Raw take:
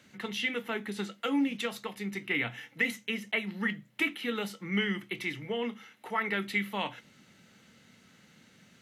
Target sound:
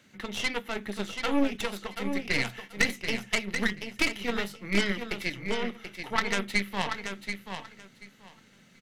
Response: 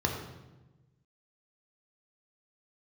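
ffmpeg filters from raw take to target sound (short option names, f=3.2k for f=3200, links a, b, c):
-af "aeval=exprs='0.158*(cos(1*acos(clip(val(0)/0.158,-1,1)))-cos(1*PI/2))+0.0447*(cos(3*acos(clip(val(0)/0.158,-1,1)))-cos(3*PI/2))+0.00708*(cos(5*acos(clip(val(0)/0.158,-1,1)))-cos(5*PI/2))+0.02*(cos(6*acos(clip(val(0)/0.158,-1,1)))-cos(6*PI/2))+0.00501*(cos(8*acos(clip(val(0)/0.158,-1,1)))-cos(8*PI/2))':c=same,aecho=1:1:733|1466|2199:0.422|0.0759|0.0137,volume=8dB"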